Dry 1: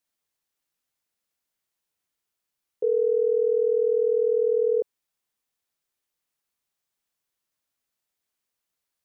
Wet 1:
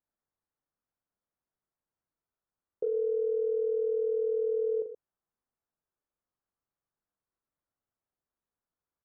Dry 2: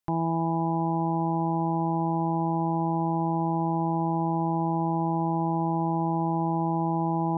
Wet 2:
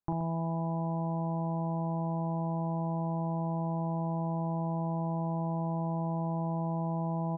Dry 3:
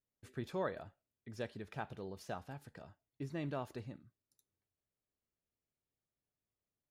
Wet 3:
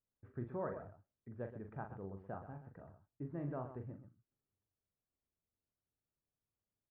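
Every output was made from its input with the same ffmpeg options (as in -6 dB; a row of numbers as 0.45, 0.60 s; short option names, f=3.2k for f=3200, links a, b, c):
-filter_complex "[0:a]lowpass=f=1.5k:w=0.5412,lowpass=f=1.5k:w=1.3066,lowshelf=f=180:g=5,acompressor=threshold=-24dB:ratio=6,asplit=2[a][b];[b]aecho=0:1:40.82|125.4:0.447|0.282[c];[a][c]amix=inputs=2:normalize=0,volume=-4dB"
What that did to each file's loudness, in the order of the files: -7.0, -6.5, -2.0 LU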